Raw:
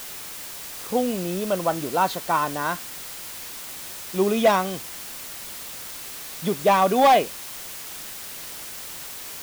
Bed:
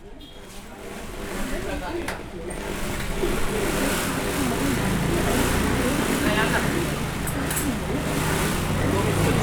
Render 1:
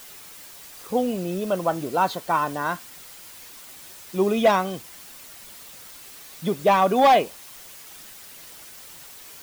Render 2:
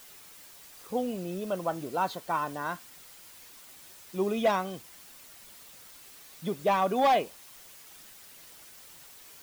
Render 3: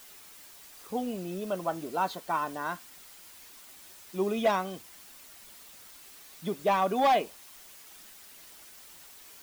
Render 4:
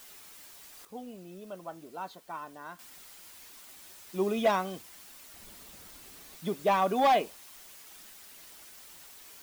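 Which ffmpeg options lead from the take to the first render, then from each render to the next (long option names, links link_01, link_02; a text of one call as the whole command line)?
ffmpeg -i in.wav -af "afftdn=noise_reduction=8:noise_floor=-37" out.wav
ffmpeg -i in.wav -af "volume=-7.5dB" out.wav
ffmpeg -i in.wav -af "equalizer=frequency=130:width=5.2:gain=-13.5,bandreject=frequency=510:width=12" out.wav
ffmpeg -i in.wav -filter_complex "[0:a]asettb=1/sr,asplit=3[link_01][link_02][link_03];[link_01]atrim=end=5.344[link_04];[link_02]atrim=start=5.34:end=6.37,asetpts=PTS-STARTPTS,afade=type=in:duration=0.004:curve=qsin,afade=type=out:start_time=1.026:duration=0.004:curve=qsin,lowshelf=frequency=490:gain=10.5[link_05];[link_03]atrim=start=6.366[link_06];[link_04][link_05]acrossfade=duration=0.004:curve1=hsin:curve2=qsin[link_07];[link_07][link_06]acrossfade=duration=0.004:curve1=qsin:curve2=hsin,asplit=3[link_08][link_09][link_10];[link_08]atrim=end=0.852[link_11];[link_09]atrim=start=0.848:end=2.792,asetpts=PTS-STARTPTS,volume=-10.5dB[link_12];[link_10]atrim=start=2.788[link_13];[link_11][link_12]acrossfade=duration=0.004:curve1=hsin:curve2=hsin[link_14];[link_14][link_13]acrossfade=duration=0.004:curve1=hsin:curve2=hsin" out.wav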